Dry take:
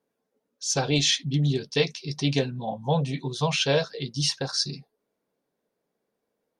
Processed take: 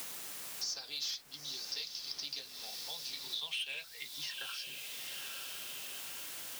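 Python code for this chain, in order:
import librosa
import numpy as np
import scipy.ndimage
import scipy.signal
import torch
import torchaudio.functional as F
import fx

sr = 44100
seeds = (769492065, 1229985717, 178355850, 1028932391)

p1 = fx.filter_sweep_bandpass(x, sr, from_hz=4900.0, to_hz=220.0, start_s=3.04, end_s=6.44, q=5.5)
p2 = 10.0 ** (-29.0 / 20.0) * np.tanh(p1 / 10.0 ** (-29.0 / 20.0))
p3 = scipy.signal.sosfilt(scipy.signal.butter(4, 130.0, 'highpass', fs=sr, output='sos'), p2)
p4 = p3 + fx.echo_diffused(p3, sr, ms=901, feedback_pct=42, wet_db=-13, dry=0)
p5 = fx.vibrato(p4, sr, rate_hz=1.8, depth_cents=8.9)
p6 = fx.quant_dither(p5, sr, seeds[0], bits=8, dither='triangular')
p7 = p5 + F.gain(torch.from_numpy(p6), -9.0).numpy()
p8 = fx.band_squash(p7, sr, depth_pct=100)
y = F.gain(torch.from_numpy(p8), -1.5).numpy()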